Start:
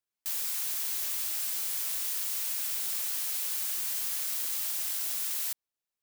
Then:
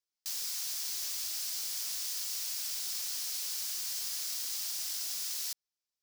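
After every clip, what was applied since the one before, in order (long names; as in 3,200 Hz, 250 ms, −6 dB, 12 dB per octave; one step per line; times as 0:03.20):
parametric band 5,200 Hz +12 dB 1 octave
level −7 dB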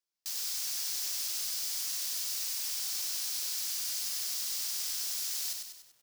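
feedback echo at a low word length 97 ms, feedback 55%, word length 10 bits, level −4 dB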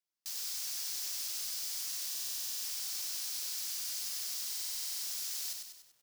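buffer that repeats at 0:02.08/0:04.48, samples 2,048, times 11
level −3.5 dB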